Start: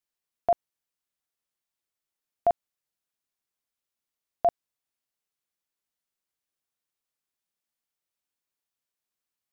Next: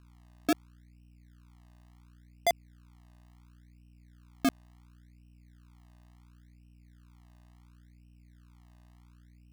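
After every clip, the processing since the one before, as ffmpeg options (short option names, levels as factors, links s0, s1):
-af "aeval=exprs='val(0)+0.00251*(sin(2*PI*60*n/s)+sin(2*PI*2*60*n/s)/2+sin(2*PI*3*60*n/s)/3+sin(2*PI*4*60*n/s)/4+sin(2*PI*5*60*n/s)/5)':c=same,acrusher=samples=32:mix=1:aa=0.000001:lfo=1:lforange=32:lforate=0.71,volume=0.631"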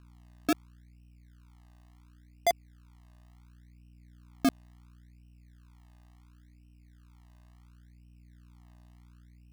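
-af "aphaser=in_gain=1:out_gain=1:delay=3.2:decay=0.21:speed=0.23:type=triangular"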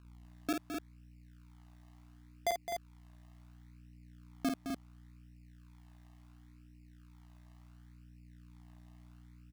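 -filter_complex "[0:a]alimiter=limit=0.0708:level=0:latency=1:release=498,asplit=2[s0][s1];[s1]aecho=0:1:49.56|212.8|256.6:0.562|0.355|0.501[s2];[s0][s2]amix=inputs=2:normalize=0,volume=0.708"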